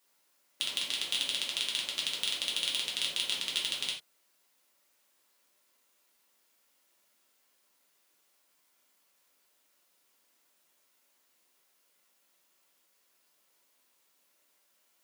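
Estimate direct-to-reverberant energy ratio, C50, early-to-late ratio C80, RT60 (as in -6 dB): -4.0 dB, 6.0 dB, 12.0 dB, not exponential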